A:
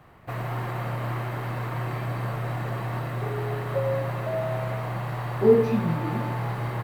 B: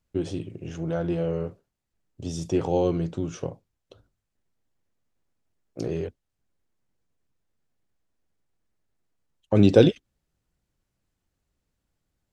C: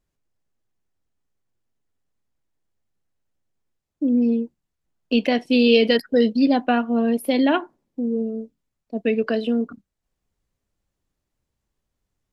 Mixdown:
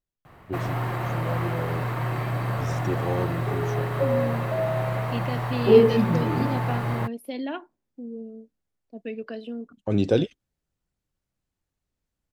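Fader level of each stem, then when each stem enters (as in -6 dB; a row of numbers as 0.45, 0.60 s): +2.5, -5.5, -13.0 dB; 0.25, 0.35, 0.00 s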